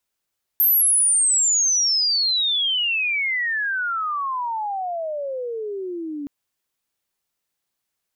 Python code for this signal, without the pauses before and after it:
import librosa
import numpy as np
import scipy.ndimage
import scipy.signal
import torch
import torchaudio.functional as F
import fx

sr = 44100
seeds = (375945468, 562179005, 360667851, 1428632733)

y = fx.chirp(sr, length_s=5.67, from_hz=13000.0, to_hz=280.0, law='logarithmic', from_db=-13.5, to_db=-27.0)